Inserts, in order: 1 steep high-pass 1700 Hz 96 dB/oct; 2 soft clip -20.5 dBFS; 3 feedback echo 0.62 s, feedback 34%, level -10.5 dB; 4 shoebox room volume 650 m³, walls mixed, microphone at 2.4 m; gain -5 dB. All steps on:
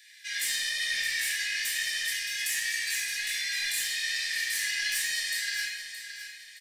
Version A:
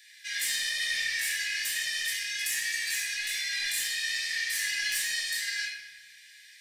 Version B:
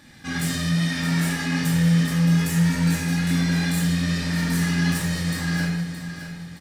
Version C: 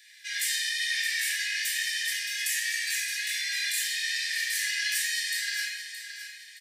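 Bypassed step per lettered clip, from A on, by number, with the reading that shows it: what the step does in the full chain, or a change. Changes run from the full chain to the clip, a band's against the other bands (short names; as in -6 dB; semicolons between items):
3, momentary loudness spread change -4 LU; 1, crest factor change -2.0 dB; 2, distortion -21 dB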